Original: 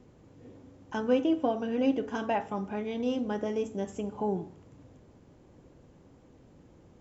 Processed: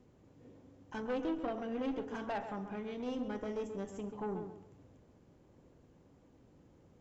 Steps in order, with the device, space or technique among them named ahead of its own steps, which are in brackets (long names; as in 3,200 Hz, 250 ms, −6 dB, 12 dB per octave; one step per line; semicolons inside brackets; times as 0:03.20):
rockabilly slapback (tube saturation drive 26 dB, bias 0.5; tape delay 134 ms, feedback 32%, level −7.5 dB, low-pass 2,400 Hz)
level −5 dB